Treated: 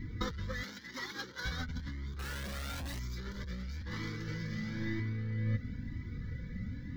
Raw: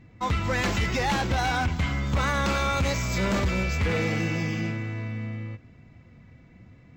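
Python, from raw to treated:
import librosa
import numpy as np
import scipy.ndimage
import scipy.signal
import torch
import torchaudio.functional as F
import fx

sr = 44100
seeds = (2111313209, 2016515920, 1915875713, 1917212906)

y = fx.peak_eq(x, sr, hz=1100.0, db=-13.0, octaves=0.57)
y = y + 0.31 * np.pad(y, (int(4.1 * sr / 1000.0), 0))[:len(y)]
y = 10.0 ** (-30.5 / 20.0) * np.tanh(y / 10.0 ** (-30.5 / 20.0))
y = fx.fixed_phaser(y, sr, hz=2600.0, stages=6)
y = fx.over_compress(y, sr, threshold_db=-40.0, ratio=-0.5)
y = fx.highpass(y, sr, hz=280.0, slope=12, at=(0.63, 1.45))
y = fx.schmitt(y, sr, flips_db=-59.5, at=(2.19, 2.99))
y = fx.peak_eq(y, sr, hz=11000.0, db=-2.5, octaves=2.2)
y = fx.room_flutter(y, sr, wall_m=8.8, rt60_s=1.4, at=(4.53, 5.0))
y = fx.comb_cascade(y, sr, direction='rising', hz=1.0)
y = F.gain(torch.from_numpy(y), 8.5).numpy()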